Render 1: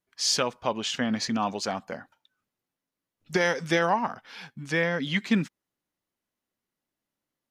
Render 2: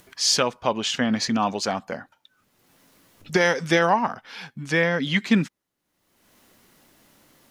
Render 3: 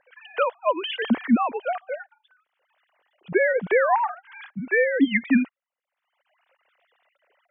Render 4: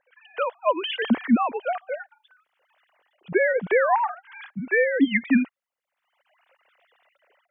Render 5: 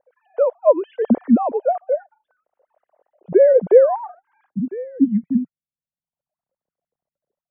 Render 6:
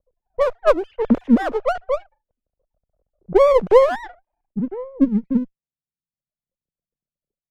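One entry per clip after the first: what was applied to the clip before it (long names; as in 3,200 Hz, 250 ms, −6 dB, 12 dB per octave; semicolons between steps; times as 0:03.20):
upward compression, threshold −41 dBFS; level +4.5 dB
three sine waves on the formant tracks
automatic gain control gain up to 11 dB; level −7.5 dB
low-pass filter sweep 580 Hz → 160 Hz, 0:03.67–0:05.34; level +3.5 dB
lower of the sound and its delayed copy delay 0.36 ms; low-pass that shuts in the quiet parts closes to 300 Hz, open at −14.5 dBFS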